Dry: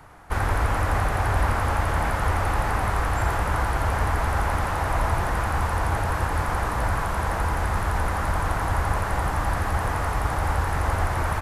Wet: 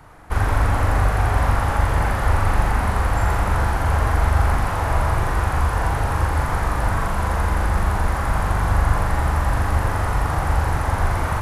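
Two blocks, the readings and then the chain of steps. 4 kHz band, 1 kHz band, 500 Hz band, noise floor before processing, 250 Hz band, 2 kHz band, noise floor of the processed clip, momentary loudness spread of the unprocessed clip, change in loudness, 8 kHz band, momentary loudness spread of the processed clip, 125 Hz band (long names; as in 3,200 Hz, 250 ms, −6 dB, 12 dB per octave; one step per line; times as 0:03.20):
+1.5 dB, +2.0 dB, +2.5 dB, −27 dBFS, +4.0 dB, +2.0 dB, −24 dBFS, 2 LU, +4.0 dB, +1.5 dB, 3 LU, +5.5 dB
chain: low-shelf EQ 250 Hz +4 dB
on a send: flutter between parallel walls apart 7 metres, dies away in 0.51 s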